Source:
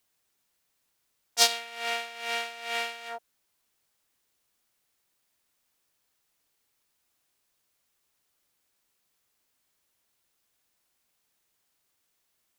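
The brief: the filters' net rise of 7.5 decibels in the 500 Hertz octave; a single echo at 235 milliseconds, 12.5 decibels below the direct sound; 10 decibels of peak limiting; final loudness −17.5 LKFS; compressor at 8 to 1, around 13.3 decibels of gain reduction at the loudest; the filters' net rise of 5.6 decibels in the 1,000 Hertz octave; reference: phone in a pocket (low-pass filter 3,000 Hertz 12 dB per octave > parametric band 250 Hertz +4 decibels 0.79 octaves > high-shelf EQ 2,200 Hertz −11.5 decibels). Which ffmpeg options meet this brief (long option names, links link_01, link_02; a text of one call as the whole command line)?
ffmpeg -i in.wav -af "equalizer=frequency=500:width_type=o:gain=8.5,equalizer=frequency=1000:width_type=o:gain=6,acompressor=threshold=-27dB:ratio=8,alimiter=limit=-21dB:level=0:latency=1,lowpass=3000,equalizer=frequency=250:width_type=o:width=0.79:gain=4,highshelf=frequency=2200:gain=-11.5,aecho=1:1:235:0.237,volume=21dB" out.wav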